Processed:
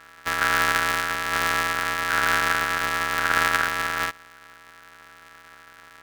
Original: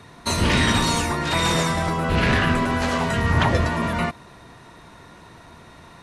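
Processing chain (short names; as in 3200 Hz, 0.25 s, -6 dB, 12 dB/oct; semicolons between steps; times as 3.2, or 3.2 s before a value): sample sorter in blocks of 256 samples; ring modulator 1500 Hz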